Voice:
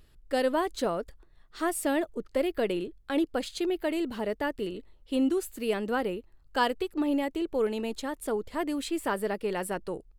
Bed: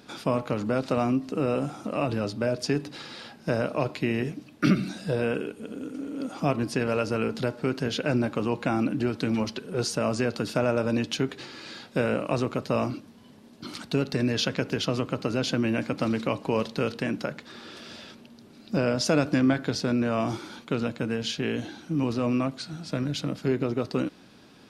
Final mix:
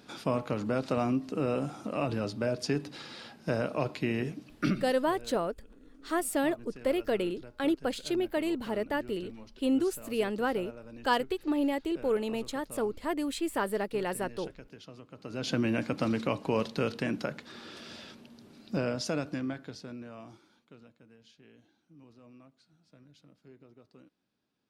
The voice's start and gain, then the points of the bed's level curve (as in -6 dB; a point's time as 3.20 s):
4.50 s, -1.0 dB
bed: 4.59 s -4 dB
5.12 s -22 dB
15.09 s -22 dB
15.53 s -3 dB
18.54 s -3 dB
21.03 s -29.5 dB